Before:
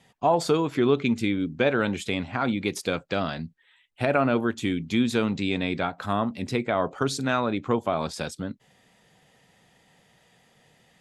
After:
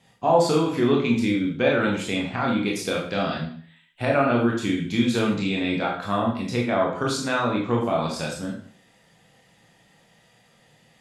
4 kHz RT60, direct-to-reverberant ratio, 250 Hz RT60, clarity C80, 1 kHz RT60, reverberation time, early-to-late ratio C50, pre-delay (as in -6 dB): 0.50 s, -2.5 dB, 0.50 s, 8.5 dB, 0.50 s, 0.50 s, 5.0 dB, 19 ms